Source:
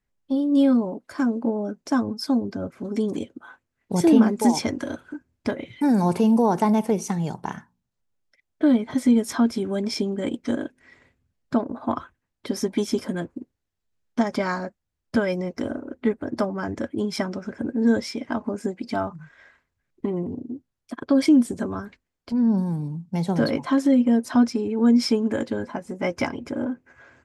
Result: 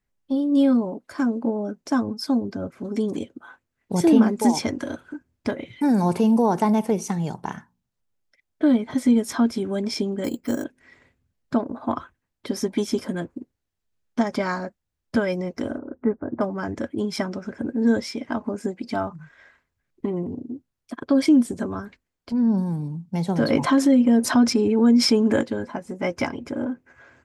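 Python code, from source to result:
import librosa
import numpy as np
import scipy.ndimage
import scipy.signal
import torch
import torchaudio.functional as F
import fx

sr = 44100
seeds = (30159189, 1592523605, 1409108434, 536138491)

y = fx.resample_bad(x, sr, factor=6, down='filtered', up='hold', at=(10.24, 10.64))
y = fx.lowpass(y, sr, hz=1500.0, slope=24, at=(15.78, 16.41))
y = fx.env_flatten(y, sr, amount_pct=50, at=(23.5, 25.41))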